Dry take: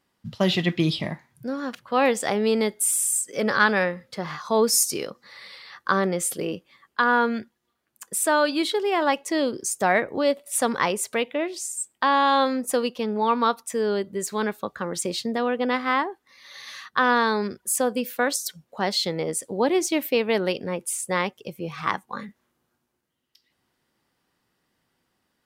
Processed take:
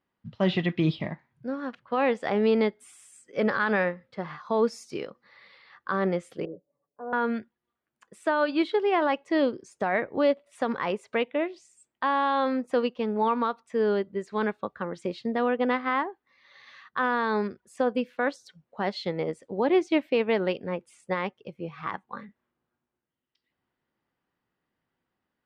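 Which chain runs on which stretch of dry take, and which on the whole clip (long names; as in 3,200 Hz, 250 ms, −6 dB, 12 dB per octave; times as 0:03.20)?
0:06.45–0:07.13: transistor ladder low-pass 640 Hz, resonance 65% + comb filter 6.9 ms, depth 98%
whole clip: low-pass filter 2,700 Hz 12 dB per octave; brickwall limiter −14.5 dBFS; expander for the loud parts 1.5 to 1, over −38 dBFS; level +1.5 dB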